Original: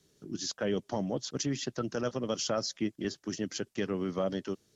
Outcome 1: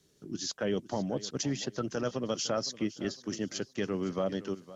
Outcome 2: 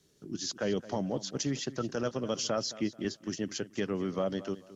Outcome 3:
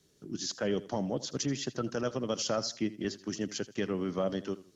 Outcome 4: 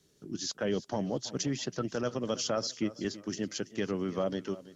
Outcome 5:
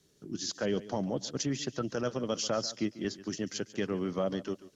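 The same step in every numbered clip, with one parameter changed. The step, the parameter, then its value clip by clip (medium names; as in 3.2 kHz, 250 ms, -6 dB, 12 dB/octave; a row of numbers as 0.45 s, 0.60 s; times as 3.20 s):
modulated delay, time: 509 ms, 217 ms, 81 ms, 329 ms, 141 ms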